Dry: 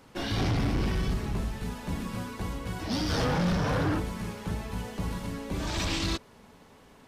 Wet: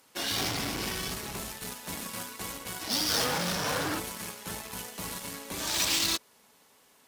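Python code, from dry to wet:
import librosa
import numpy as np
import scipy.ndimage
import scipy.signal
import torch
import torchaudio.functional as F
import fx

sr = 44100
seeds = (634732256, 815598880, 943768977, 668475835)

y = fx.cheby_harmonics(x, sr, harmonics=(3, 7), levels_db=(-27, -24), full_scale_db=-22.5)
y = fx.riaa(y, sr, side='recording')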